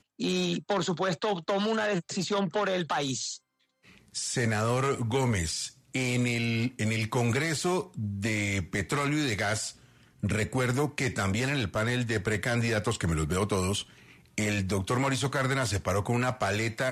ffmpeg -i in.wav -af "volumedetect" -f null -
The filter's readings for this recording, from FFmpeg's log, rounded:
mean_volume: -29.2 dB
max_volume: -14.3 dB